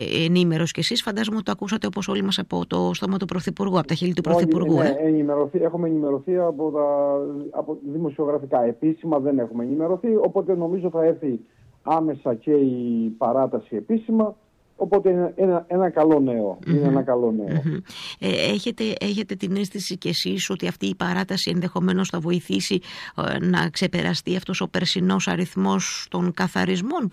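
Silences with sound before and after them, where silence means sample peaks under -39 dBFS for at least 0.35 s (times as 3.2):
11.41–11.86
14.33–14.79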